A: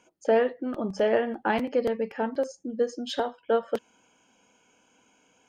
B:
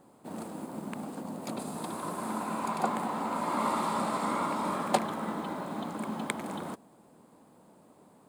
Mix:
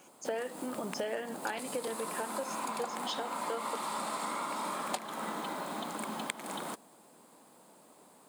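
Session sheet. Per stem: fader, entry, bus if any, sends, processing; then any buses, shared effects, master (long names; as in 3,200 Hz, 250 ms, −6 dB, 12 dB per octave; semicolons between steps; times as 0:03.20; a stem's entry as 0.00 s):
−2.5 dB, 0.00 s, no send, no processing
+0.5 dB, 0.00 s, no send, no processing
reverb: not used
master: high-pass filter 380 Hz 6 dB per octave; high-shelf EQ 2,200 Hz +8.5 dB; downward compressor 6 to 1, threshold −33 dBFS, peak gain reduction 14.5 dB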